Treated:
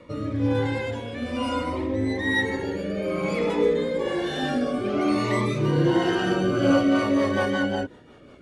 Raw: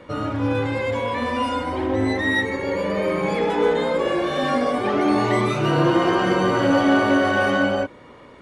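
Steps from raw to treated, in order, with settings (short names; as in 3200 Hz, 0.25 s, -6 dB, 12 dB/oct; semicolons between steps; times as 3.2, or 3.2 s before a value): rotary speaker horn 1.1 Hz, later 5.5 Hz, at 6.32; cascading phaser falling 0.57 Hz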